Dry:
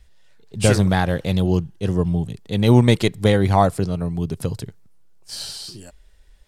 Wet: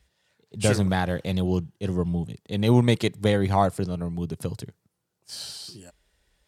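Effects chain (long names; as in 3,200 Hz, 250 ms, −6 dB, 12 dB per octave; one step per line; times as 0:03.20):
high-pass filter 82 Hz
level −5 dB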